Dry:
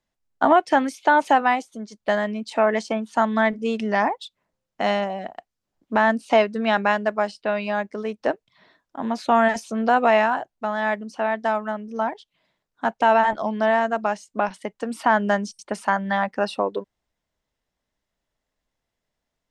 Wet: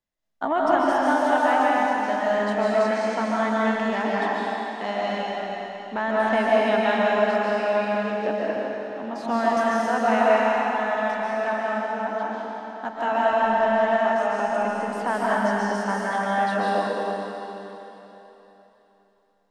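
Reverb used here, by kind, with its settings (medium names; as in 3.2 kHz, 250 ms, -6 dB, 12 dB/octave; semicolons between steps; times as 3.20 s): algorithmic reverb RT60 3.5 s, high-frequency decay 1×, pre-delay 100 ms, DRR -7 dB; trim -8.5 dB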